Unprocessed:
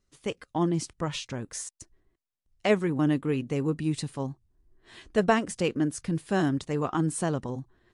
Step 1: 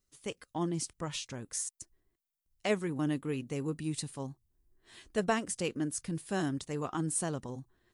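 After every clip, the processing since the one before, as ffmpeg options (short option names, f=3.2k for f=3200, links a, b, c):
-af "aemphasis=mode=production:type=50kf,volume=-7.5dB"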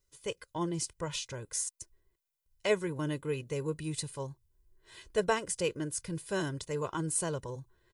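-af "aecho=1:1:2:0.7"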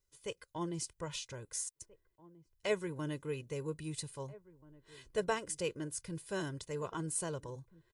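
-filter_complex "[0:a]asplit=2[a][b];[b]adelay=1633,volume=-20dB,highshelf=f=4k:g=-36.7[c];[a][c]amix=inputs=2:normalize=0,volume=-5dB"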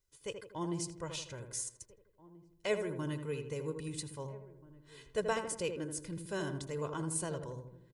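-filter_complex "[0:a]asplit=2[a][b];[b]adelay=81,lowpass=f=1.4k:p=1,volume=-6dB,asplit=2[c][d];[d]adelay=81,lowpass=f=1.4k:p=1,volume=0.54,asplit=2[e][f];[f]adelay=81,lowpass=f=1.4k:p=1,volume=0.54,asplit=2[g][h];[h]adelay=81,lowpass=f=1.4k:p=1,volume=0.54,asplit=2[i][j];[j]adelay=81,lowpass=f=1.4k:p=1,volume=0.54,asplit=2[k][l];[l]adelay=81,lowpass=f=1.4k:p=1,volume=0.54,asplit=2[m][n];[n]adelay=81,lowpass=f=1.4k:p=1,volume=0.54[o];[a][c][e][g][i][k][m][o]amix=inputs=8:normalize=0"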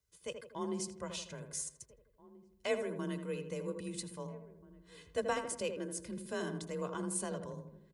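-af "afreqshift=31,volume=-1dB"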